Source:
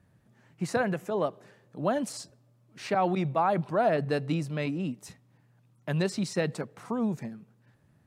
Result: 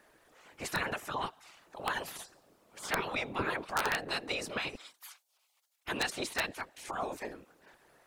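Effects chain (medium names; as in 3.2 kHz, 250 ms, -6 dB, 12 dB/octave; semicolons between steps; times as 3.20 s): 4.75–5.89 s: high-pass 1.2 kHz 24 dB/octave; spectral gate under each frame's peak -15 dB weak; in parallel at +1 dB: compression 4:1, threshold -53 dBFS, peak gain reduction 17 dB; on the sum: whisper effect; integer overflow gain 24.5 dB; trim +4 dB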